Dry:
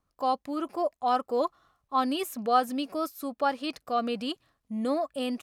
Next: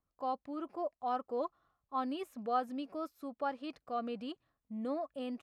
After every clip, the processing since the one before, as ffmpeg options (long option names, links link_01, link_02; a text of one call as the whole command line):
ffmpeg -i in.wav -af "lowpass=frequency=1800:poles=1,volume=-8.5dB" out.wav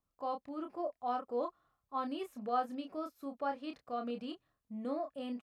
ffmpeg -i in.wav -filter_complex "[0:a]asplit=2[link_01][link_02];[link_02]adelay=29,volume=-6dB[link_03];[link_01][link_03]amix=inputs=2:normalize=0,volume=-1.5dB" out.wav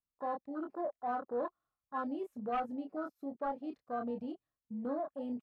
ffmpeg -i in.wav -af "asoftclip=type=tanh:threshold=-31.5dB,afwtdn=0.00708,volume=2.5dB" out.wav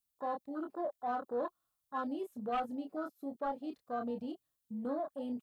ffmpeg -i in.wav -af "aexciter=amount=2.6:drive=3.6:freq=3100" out.wav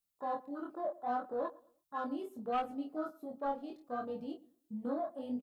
ffmpeg -i in.wav -filter_complex "[0:a]asplit=2[link_01][link_02];[link_02]adelay=112,lowpass=frequency=1500:poles=1,volume=-20dB,asplit=2[link_03][link_04];[link_04]adelay=112,lowpass=frequency=1500:poles=1,volume=0.32,asplit=2[link_05][link_06];[link_06]adelay=112,lowpass=frequency=1500:poles=1,volume=0.32[link_07];[link_01][link_03][link_05][link_07]amix=inputs=4:normalize=0,flanger=delay=18:depth=7.1:speed=0.71,volume=2.5dB" out.wav